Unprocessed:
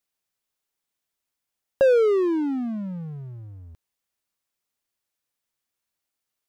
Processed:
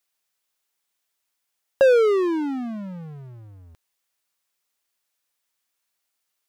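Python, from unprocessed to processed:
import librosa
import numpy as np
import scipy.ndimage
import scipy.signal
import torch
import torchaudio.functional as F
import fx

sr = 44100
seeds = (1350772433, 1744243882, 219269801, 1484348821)

y = fx.low_shelf(x, sr, hz=410.0, db=-10.5)
y = y * librosa.db_to_amplitude(6.0)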